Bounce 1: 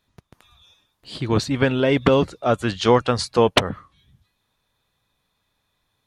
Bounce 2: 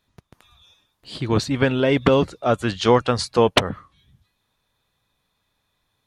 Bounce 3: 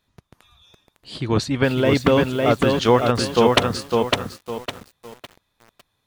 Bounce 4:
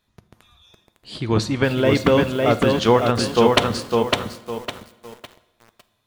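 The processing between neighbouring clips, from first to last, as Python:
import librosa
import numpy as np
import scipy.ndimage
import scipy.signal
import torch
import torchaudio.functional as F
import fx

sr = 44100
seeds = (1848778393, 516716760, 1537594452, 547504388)

y1 = x
y2 = fx.echo_crushed(y1, sr, ms=556, feedback_pct=35, bits=7, wet_db=-3.0)
y3 = fx.rev_fdn(y2, sr, rt60_s=1.0, lf_ratio=1.0, hf_ratio=0.8, size_ms=28.0, drr_db=12.5)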